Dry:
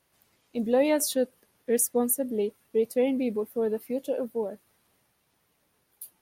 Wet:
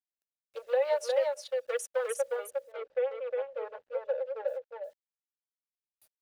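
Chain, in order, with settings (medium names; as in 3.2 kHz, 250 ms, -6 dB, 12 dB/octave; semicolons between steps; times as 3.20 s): local Wiener filter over 41 samples; low-pass that closes with the level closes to 2.8 kHz, closed at -25.5 dBFS; steep high-pass 470 Hz 72 dB/octave; treble shelf 2.4 kHz +7 dB; comb 3.5 ms, depth 83%; compression 6:1, threshold -24 dBFS, peak gain reduction 9 dB; bit crusher 11-bit; 2.36–4.48 s: tape spacing loss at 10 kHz 29 dB; delay 358 ms -3.5 dB; warped record 78 rpm, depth 100 cents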